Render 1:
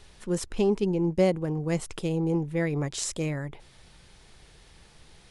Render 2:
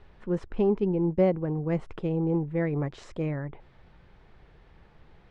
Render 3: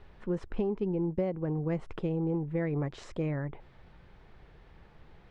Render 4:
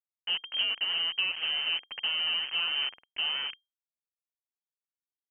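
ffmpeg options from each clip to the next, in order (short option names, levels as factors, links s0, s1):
-af "lowpass=1700"
-af "acompressor=threshold=0.0447:ratio=6"
-af "acrusher=bits=5:mix=0:aa=0.000001,lowpass=f=2700:t=q:w=0.5098,lowpass=f=2700:t=q:w=0.6013,lowpass=f=2700:t=q:w=0.9,lowpass=f=2700:t=q:w=2.563,afreqshift=-3200"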